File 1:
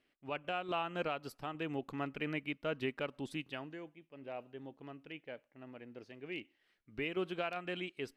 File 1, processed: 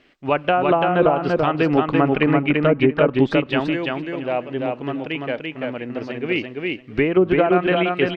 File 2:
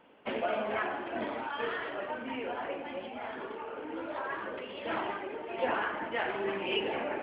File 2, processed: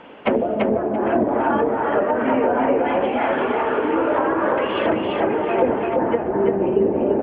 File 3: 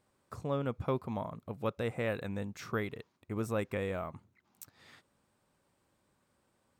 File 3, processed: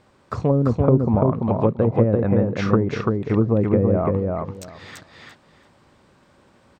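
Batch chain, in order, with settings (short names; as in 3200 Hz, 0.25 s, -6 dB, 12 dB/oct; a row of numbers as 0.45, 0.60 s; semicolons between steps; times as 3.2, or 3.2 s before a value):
treble ducked by the level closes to 360 Hz, closed at -30 dBFS; running mean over 4 samples; on a send: feedback echo 0.339 s, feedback 18%, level -3 dB; on the sum: match loudness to -20 LUFS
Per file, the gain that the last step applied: +21.5, +18.0, +18.0 dB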